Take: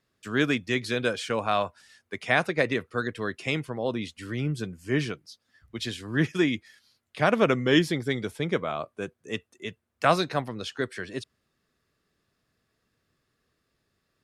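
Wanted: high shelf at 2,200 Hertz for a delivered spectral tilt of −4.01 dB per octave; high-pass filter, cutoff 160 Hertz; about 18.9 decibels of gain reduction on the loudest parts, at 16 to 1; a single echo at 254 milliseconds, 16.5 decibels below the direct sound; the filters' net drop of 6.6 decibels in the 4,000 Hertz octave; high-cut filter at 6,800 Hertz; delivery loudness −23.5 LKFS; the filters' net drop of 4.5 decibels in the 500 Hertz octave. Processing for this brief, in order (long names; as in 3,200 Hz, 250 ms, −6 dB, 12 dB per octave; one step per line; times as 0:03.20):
high-pass filter 160 Hz
low-pass filter 6,800 Hz
parametric band 500 Hz −5.5 dB
high-shelf EQ 2,200 Hz −4.5 dB
parametric band 4,000 Hz −4 dB
downward compressor 16 to 1, threshold −38 dBFS
single-tap delay 254 ms −16.5 dB
level +20.5 dB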